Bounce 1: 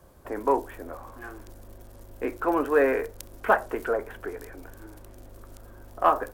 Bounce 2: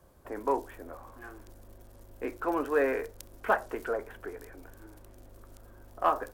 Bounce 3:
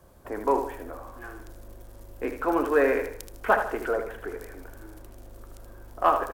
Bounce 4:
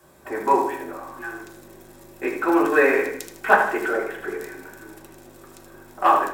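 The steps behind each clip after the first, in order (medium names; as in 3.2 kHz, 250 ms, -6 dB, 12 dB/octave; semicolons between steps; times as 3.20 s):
dynamic bell 5.2 kHz, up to +4 dB, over -47 dBFS, Q 0.79; trim -5.5 dB
feedback delay 77 ms, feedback 39%, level -8 dB; trim +4.5 dB
reverberation RT60 0.55 s, pre-delay 3 ms, DRR -2 dB; trim +4.5 dB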